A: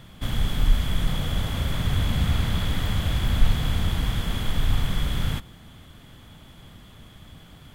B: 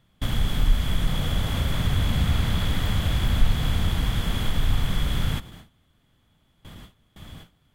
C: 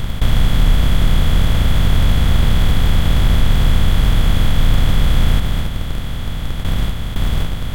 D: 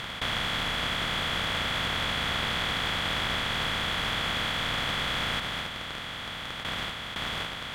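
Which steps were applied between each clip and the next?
gate with hold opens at -35 dBFS; in parallel at +0.5 dB: compression, threshold -27 dBFS, peak gain reduction 16 dB; on the sum: trim -2.5 dB
spectral levelling over time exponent 0.2; in parallel at -11 dB: Schmitt trigger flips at -14.5 dBFS; on the sum: trim +1 dB
band-pass filter 2.1 kHz, Q 0.63

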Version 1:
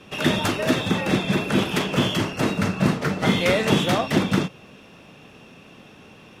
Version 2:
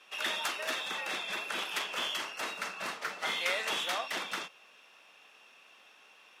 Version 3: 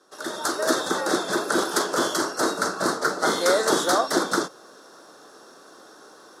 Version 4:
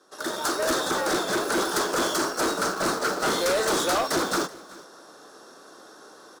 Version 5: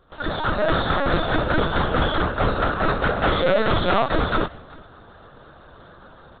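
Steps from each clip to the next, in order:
high-pass 950 Hz 12 dB/octave; trim -7 dB
tone controls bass +9 dB, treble +2 dB; level rider gain up to 12 dB; FFT filter 210 Hz 0 dB, 330 Hz +12 dB, 870 Hz 0 dB, 1.5 kHz +3 dB, 2.6 kHz -27 dB, 4.1 kHz 0 dB, 9.8 kHz +3 dB, 15 kHz -6 dB
in parallel at -8.5 dB: bit crusher 5-bit; on the sum: saturation -20 dBFS, distortion -9 dB; delay 379 ms -20.5 dB
in parallel at -9.5 dB: word length cut 6-bit, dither none; on the sum: LPC vocoder at 8 kHz pitch kept; trim +3 dB

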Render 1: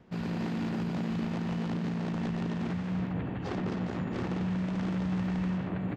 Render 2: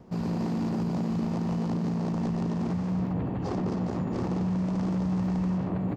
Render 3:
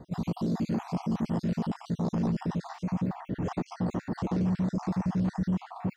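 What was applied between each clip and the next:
high-order bell 2.3 kHz -9 dB; in parallel at +2 dB: peak limiter -33.5 dBFS, peak gain reduction 10.5 dB
random holes in the spectrogram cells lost 49%; in parallel at -6 dB: saturation -36.5 dBFS, distortion -7 dB

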